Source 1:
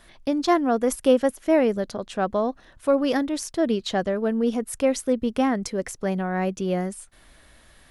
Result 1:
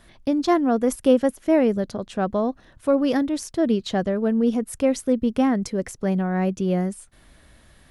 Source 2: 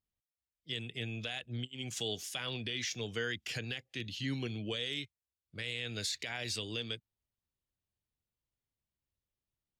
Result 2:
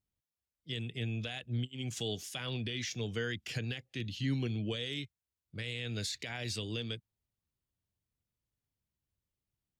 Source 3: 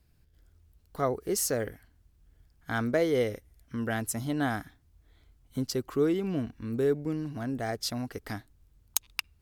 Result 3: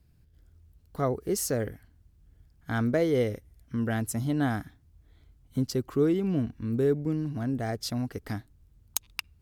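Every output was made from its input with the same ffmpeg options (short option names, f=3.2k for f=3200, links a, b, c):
-af "equalizer=f=120:w=0.39:g=7.5,volume=-2dB"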